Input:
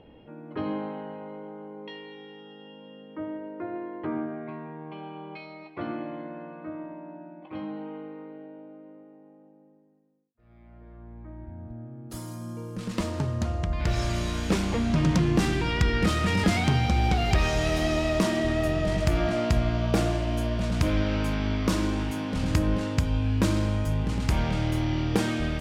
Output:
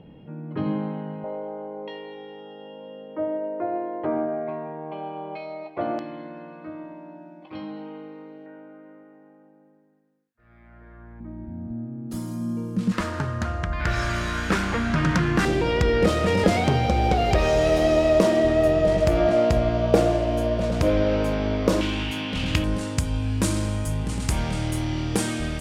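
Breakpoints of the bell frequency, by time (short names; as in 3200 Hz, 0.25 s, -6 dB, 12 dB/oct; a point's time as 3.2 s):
bell +13.5 dB 0.96 oct
160 Hz
from 1.24 s 630 Hz
from 5.99 s 5000 Hz
from 8.46 s 1600 Hz
from 11.2 s 210 Hz
from 12.92 s 1500 Hz
from 15.45 s 520 Hz
from 21.81 s 2900 Hz
from 22.64 s 9100 Hz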